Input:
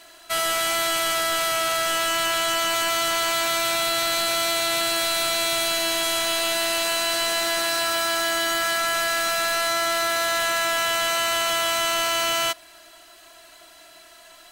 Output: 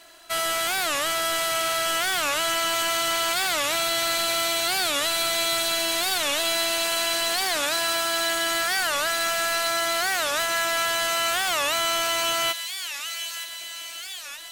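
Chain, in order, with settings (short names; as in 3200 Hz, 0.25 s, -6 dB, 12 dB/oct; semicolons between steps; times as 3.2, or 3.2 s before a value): thin delay 0.923 s, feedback 62%, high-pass 2300 Hz, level -6 dB; record warp 45 rpm, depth 250 cents; gain -2 dB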